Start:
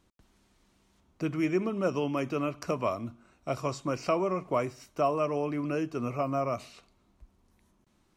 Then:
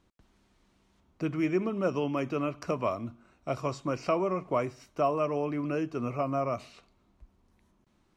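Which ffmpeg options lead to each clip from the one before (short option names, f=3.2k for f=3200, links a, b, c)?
-af "highshelf=f=7k:g=-9.5"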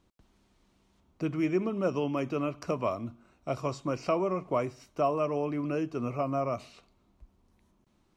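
-af "equalizer=f=1.7k:w=1.5:g=-3"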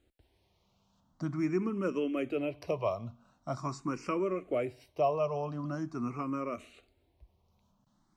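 -filter_complex "[0:a]asplit=2[a][b];[b]afreqshift=0.44[c];[a][c]amix=inputs=2:normalize=1"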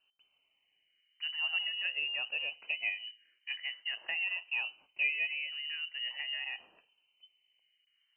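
-af "lowpass=f=2.6k:t=q:w=0.5098,lowpass=f=2.6k:t=q:w=0.6013,lowpass=f=2.6k:t=q:w=0.9,lowpass=f=2.6k:t=q:w=2.563,afreqshift=-3100,volume=-3.5dB"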